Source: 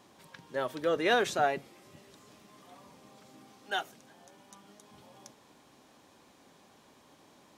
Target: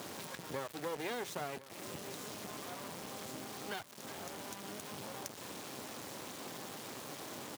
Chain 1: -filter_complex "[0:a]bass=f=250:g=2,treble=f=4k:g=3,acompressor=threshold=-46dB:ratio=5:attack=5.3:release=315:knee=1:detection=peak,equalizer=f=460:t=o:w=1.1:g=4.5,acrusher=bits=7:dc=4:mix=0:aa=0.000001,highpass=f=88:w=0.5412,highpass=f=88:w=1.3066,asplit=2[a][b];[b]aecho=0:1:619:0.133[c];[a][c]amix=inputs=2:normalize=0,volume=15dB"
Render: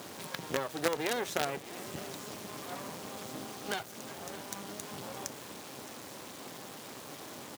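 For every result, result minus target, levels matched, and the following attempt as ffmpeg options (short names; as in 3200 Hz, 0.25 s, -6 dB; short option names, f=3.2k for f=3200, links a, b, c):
echo 0.432 s early; compressor: peak gain reduction -6 dB
-filter_complex "[0:a]bass=f=250:g=2,treble=f=4k:g=3,acompressor=threshold=-46dB:ratio=5:attack=5.3:release=315:knee=1:detection=peak,equalizer=f=460:t=o:w=1.1:g=4.5,acrusher=bits=7:dc=4:mix=0:aa=0.000001,highpass=f=88:w=0.5412,highpass=f=88:w=1.3066,asplit=2[a][b];[b]aecho=0:1:1051:0.133[c];[a][c]amix=inputs=2:normalize=0,volume=15dB"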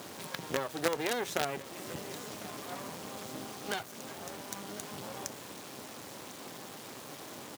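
compressor: peak gain reduction -6 dB
-filter_complex "[0:a]bass=f=250:g=2,treble=f=4k:g=3,acompressor=threshold=-53.5dB:ratio=5:attack=5.3:release=315:knee=1:detection=peak,equalizer=f=460:t=o:w=1.1:g=4.5,acrusher=bits=7:dc=4:mix=0:aa=0.000001,highpass=f=88:w=0.5412,highpass=f=88:w=1.3066,asplit=2[a][b];[b]aecho=0:1:1051:0.133[c];[a][c]amix=inputs=2:normalize=0,volume=15dB"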